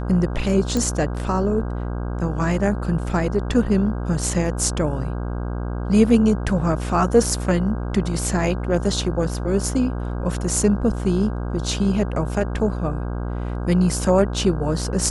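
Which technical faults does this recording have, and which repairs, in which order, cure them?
buzz 60 Hz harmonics 27 -26 dBFS
0.77 pop -10 dBFS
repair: de-click; de-hum 60 Hz, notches 27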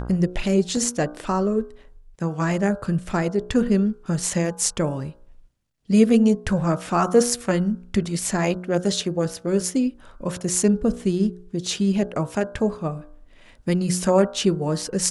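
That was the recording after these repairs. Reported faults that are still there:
none

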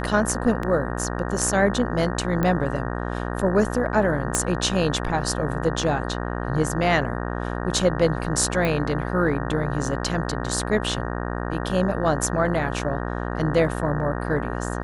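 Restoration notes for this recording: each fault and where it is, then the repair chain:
buzz 60 Hz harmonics 31 -28 dBFS
0.63 gap 3.1 ms
2.43 pop -12 dBFS
4.35 pop -7 dBFS
8.65 pop -12 dBFS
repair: de-click; de-hum 60 Hz, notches 31; interpolate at 0.63, 3.1 ms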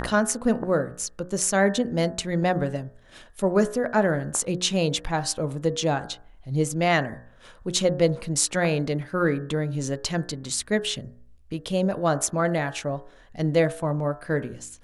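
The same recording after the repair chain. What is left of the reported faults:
4.35 pop

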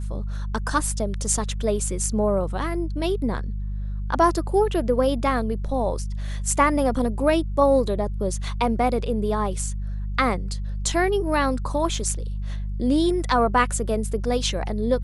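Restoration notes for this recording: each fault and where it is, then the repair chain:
hum 50 Hz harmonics 4 -28 dBFS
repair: de-hum 50 Hz, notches 4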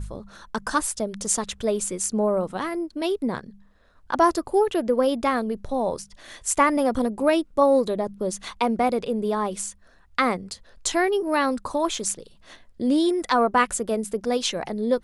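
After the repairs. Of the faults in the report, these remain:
none

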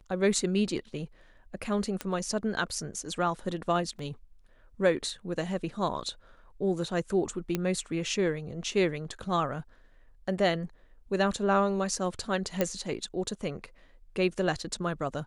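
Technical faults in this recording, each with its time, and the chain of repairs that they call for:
2.01 pop -17 dBFS
3.99 gap 3 ms
7.55 pop -14 dBFS
12.61 pop -12 dBFS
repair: de-click; interpolate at 3.99, 3 ms

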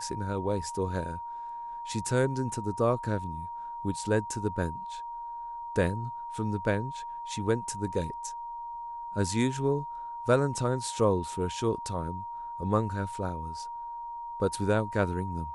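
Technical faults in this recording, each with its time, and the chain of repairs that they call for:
tone 940 Hz -36 dBFS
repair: notch 940 Hz, Q 30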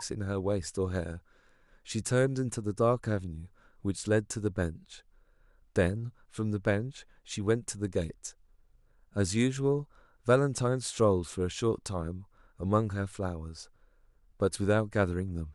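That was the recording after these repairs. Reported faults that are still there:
none

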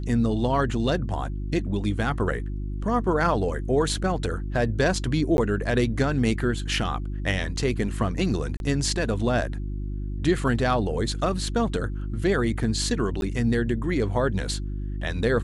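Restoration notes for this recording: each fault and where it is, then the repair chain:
hum 50 Hz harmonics 7 -30 dBFS
5.37–5.38 gap 11 ms
8.57–8.6 gap 31 ms
13.21–13.22 gap 11 ms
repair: de-hum 50 Hz, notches 7; interpolate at 5.37, 11 ms; interpolate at 8.57, 31 ms; interpolate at 13.21, 11 ms

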